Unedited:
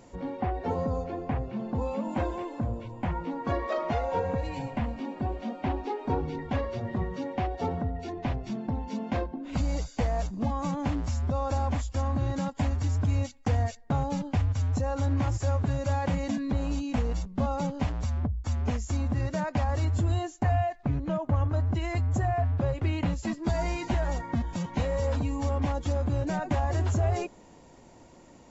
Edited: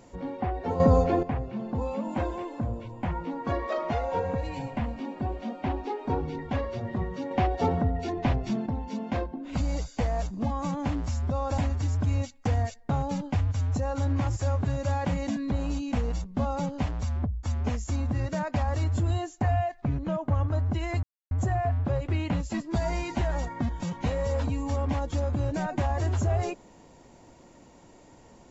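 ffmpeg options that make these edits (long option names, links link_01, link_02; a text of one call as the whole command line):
ffmpeg -i in.wav -filter_complex "[0:a]asplit=7[link_01][link_02][link_03][link_04][link_05][link_06][link_07];[link_01]atrim=end=0.802[link_08];[link_02]atrim=start=0.798:end=1.232,asetpts=PTS-STARTPTS,volume=10.5dB[link_09];[link_03]atrim=start=1.228:end=7.312[link_10];[link_04]atrim=start=7.308:end=8.662,asetpts=PTS-STARTPTS,volume=5dB[link_11];[link_05]atrim=start=8.658:end=11.582[link_12];[link_06]atrim=start=12.588:end=22.04,asetpts=PTS-STARTPTS,afade=type=out:start_time=9.448:duration=0.004:curve=hsin,apad=pad_dur=0.28[link_13];[link_07]atrim=start=22.04,asetpts=PTS-STARTPTS,afade=type=in:duration=0.004:curve=hsin[link_14];[link_08][link_09]acrossfade=duration=0.004:curve1=hsin:curve2=hsin[link_15];[link_15][link_10]acrossfade=duration=0.004:curve1=hsin:curve2=hsin[link_16];[link_16][link_11]acrossfade=duration=0.004:curve1=hsin:curve2=hsin[link_17];[link_17][link_12]acrossfade=duration=0.004:curve1=hsin:curve2=hsin[link_18];[link_13][link_14]concat=n=2:v=0:a=1[link_19];[link_18][link_19]acrossfade=duration=0.004:curve1=hsin:curve2=hsin" out.wav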